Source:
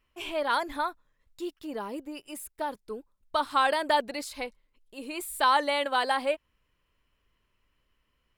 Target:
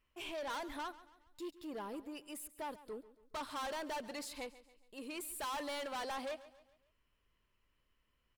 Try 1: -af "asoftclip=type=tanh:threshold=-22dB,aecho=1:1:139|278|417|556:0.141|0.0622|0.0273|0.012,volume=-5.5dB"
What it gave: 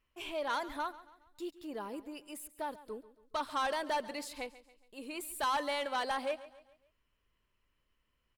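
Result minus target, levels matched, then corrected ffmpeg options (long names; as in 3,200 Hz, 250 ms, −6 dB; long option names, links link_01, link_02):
soft clipping: distortion −8 dB
-af "asoftclip=type=tanh:threshold=-33dB,aecho=1:1:139|278|417|556:0.141|0.0622|0.0273|0.012,volume=-5.5dB"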